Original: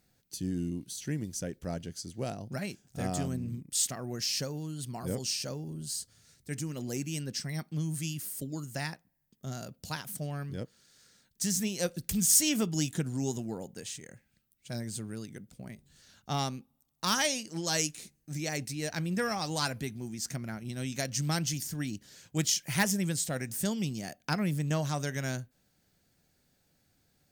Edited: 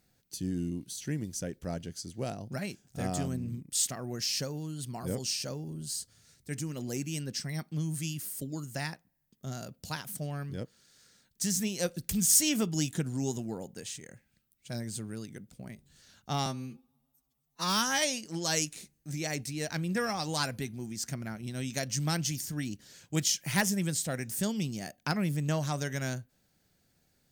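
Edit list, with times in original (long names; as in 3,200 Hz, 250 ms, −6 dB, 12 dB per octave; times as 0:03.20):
0:16.46–0:17.24: time-stretch 2×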